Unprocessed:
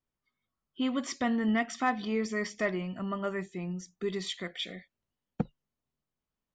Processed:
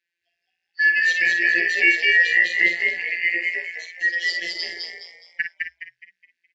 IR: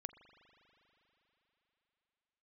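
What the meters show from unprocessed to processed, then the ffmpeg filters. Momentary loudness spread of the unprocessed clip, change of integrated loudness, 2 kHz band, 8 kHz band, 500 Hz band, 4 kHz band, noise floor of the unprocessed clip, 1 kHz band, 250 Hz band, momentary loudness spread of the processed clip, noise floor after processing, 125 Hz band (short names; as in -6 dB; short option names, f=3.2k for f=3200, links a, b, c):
9 LU, +14.0 dB, +22.0 dB, n/a, -3.5 dB, +11.5 dB, under -85 dBFS, under -15 dB, -10.0 dB, 17 LU, -81 dBFS, under -15 dB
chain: -filter_complex "[0:a]afftfilt=real='real(if(lt(b,272),68*(eq(floor(b/68),0)*1+eq(floor(b/68),1)*0+eq(floor(b/68),2)*3+eq(floor(b/68),3)*2)+mod(b,68),b),0)':imag='imag(if(lt(b,272),68*(eq(floor(b/68),0)*1+eq(floor(b/68),1)*0+eq(floor(b/68),2)*3+eq(floor(b/68),3)*2)+mod(b,68),b),0)':win_size=2048:overlap=0.75,aemphasis=mode=production:type=75kf,asplit=2[a][b];[b]aecho=0:1:43|54:0.237|0.398[c];[a][c]amix=inputs=2:normalize=0,afftfilt=real='hypot(re,im)*cos(PI*b)':imag='0':win_size=1024:overlap=0.75,firequalizer=gain_entry='entry(110,0);entry(400,5);entry(1200,-18);entry(1800,10);entry(3500,6);entry(9200,-18)':delay=0.05:min_phase=1,asplit=2[d][e];[e]asplit=5[f][g][h][i][j];[f]adelay=209,afreqshift=63,volume=-3dB[k];[g]adelay=418,afreqshift=126,volume=-12.1dB[l];[h]adelay=627,afreqshift=189,volume=-21.2dB[m];[i]adelay=836,afreqshift=252,volume=-30.4dB[n];[j]adelay=1045,afreqshift=315,volume=-39.5dB[o];[k][l][m][n][o]amix=inputs=5:normalize=0[p];[d][p]amix=inputs=2:normalize=0,volume=1.5dB" -ar 44100 -c:a ac3 -b:a 64k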